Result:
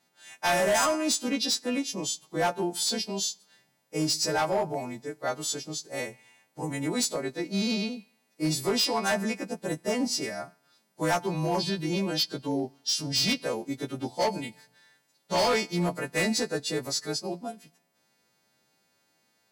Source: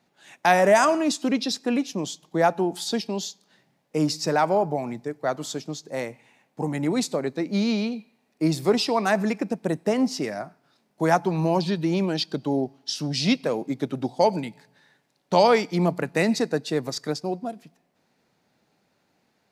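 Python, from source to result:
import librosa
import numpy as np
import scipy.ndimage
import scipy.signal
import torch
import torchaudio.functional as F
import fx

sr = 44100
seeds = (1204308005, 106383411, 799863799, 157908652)

y = fx.freq_snap(x, sr, grid_st=2)
y = np.clip(y, -10.0 ** (-16.0 / 20.0), 10.0 ** (-16.0 / 20.0))
y = y * 10.0 ** (-4.5 / 20.0)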